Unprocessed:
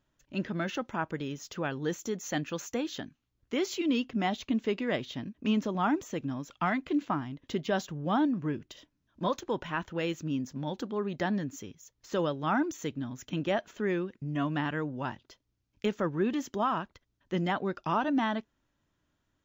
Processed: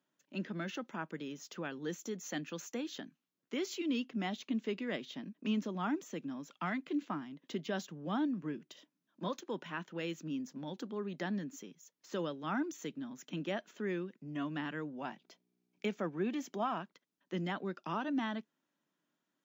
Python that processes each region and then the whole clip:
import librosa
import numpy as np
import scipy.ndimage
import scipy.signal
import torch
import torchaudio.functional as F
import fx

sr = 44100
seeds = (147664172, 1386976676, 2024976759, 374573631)

y = fx.small_body(x, sr, hz=(720.0, 2300.0), ring_ms=20, db=9, at=(14.95, 16.81), fade=0.02)
y = fx.dmg_buzz(y, sr, base_hz=60.0, harmonics=7, level_db=-65.0, tilt_db=-8, odd_only=False, at=(14.95, 16.81), fade=0.02)
y = scipy.signal.sosfilt(scipy.signal.butter(8, 160.0, 'highpass', fs=sr, output='sos'), y)
y = fx.dynamic_eq(y, sr, hz=780.0, q=0.96, threshold_db=-42.0, ratio=4.0, max_db=-5)
y = F.gain(torch.from_numpy(y), -5.5).numpy()